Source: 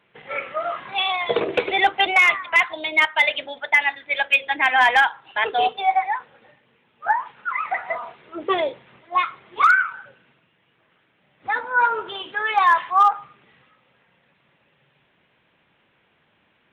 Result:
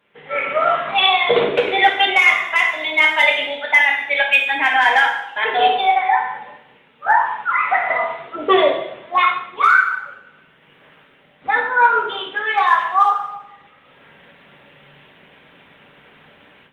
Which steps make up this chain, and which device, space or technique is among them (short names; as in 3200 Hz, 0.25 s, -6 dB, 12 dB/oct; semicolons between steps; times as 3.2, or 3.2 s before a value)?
far-field microphone of a smart speaker (reverb RT60 0.80 s, pre-delay 3 ms, DRR -1 dB; HPF 87 Hz 6 dB/oct; AGC gain up to 15 dB; gain -1.5 dB; Opus 32 kbps 48000 Hz)